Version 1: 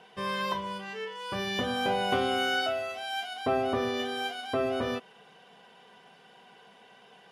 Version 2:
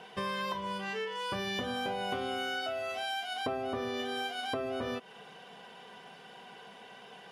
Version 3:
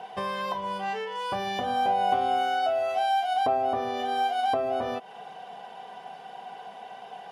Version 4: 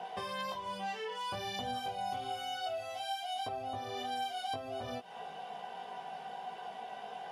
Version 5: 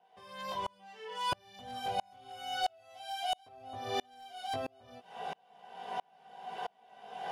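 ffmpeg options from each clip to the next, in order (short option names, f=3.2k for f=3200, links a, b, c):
-af "acompressor=threshold=-37dB:ratio=6,volume=4.5dB"
-af "equalizer=f=750:w=2.3:g=15"
-filter_complex "[0:a]acrossover=split=140|3000[a][b][c];[b]acompressor=threshold=-38dB:ratio=5[d];[a][d][c]amix=inputs=3:normalize=0,flanger=delay=16.5:depth=2.7:speed=1.2,volume=2dB"
-af "volume=32dB,asoftclip=hard,volume=-32dB,aeval=exprs='val(0)*pow(10,-35*if(lt(mod(-1.5*n/s,1),2*abs(-1.5)/1000),1-mod(-1.5*n/s,1)/(2*abs(-1.5)/1000),(mod(-1.5*n/s,1)-2*abs(-1.5)/1000)/(1-2*abs(-1.5)/1000))/20)':c=same,volume=9dB"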